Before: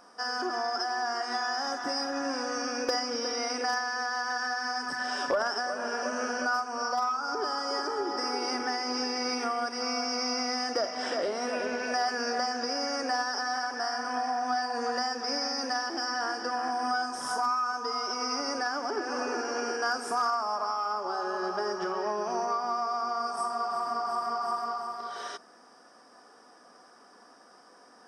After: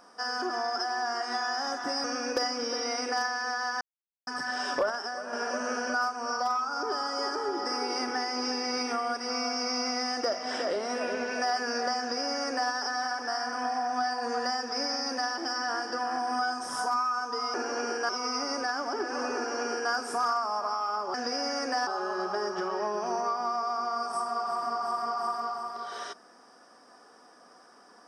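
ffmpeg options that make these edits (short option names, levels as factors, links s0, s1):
-filter_complex "[0:a]asplit=10[s0][s1][s2][s3][s4][s5][s6][s7][s8][s9];[s0]atrim=end=2.042[s10];[s1]atrim=start=2.558:end=4.33,asetpts=PTS-STARTPTS,afade=t=out:st=1.768:d=0.004:c=hsin[s11];[s2]atrim=start=4.33:end=4.79,asetpts=PTS-STARTPTS,volume=0[s12];[s3]atrim=start=4.79:end=5.412,asetpts=PTS-STARTPTS,afade=t=in:d=0.004:c=hsin[s13];[s4]atrim=start=5.408:end=5.852,asetpts=PTS-STARTPTS,volume=0.631[s14];[s5]atrim=start=5.848:end=18.062[s15];[s6]atrim=start=19.328:end=19.882[s16];[s7]atrim=start=18.058:end=21.112[s17];[s8]atrim=start=12.508:end=13.242[s18];[s9]atrim=start=21.108[s19];[s11][s12][s13]concat=n=3:v=0:a=1[s20];[s10][s20]acrossfade=d=0.004:c1=hsin:c2=hsin[s21];[s21][s14]acrossfade=d=0.004:c1=hsin:c2=hsin[s22];[s22][s15]acrossfade=d=0.004:c1=hsin:c2=hsin[s23];[s23][s16]acrossfade=d=0.004:c1=hsin:c2=hsin[s24];[s24][s17]acrossfade=d=0.004:c1=hsin:c2=hsin[s25];[s25][s18]acrossfade=d=0.004:c1=hsin:c2=hsin[s26];[s26][s19]acrossfade=d=0.004:c1=hsin:c2=hsin"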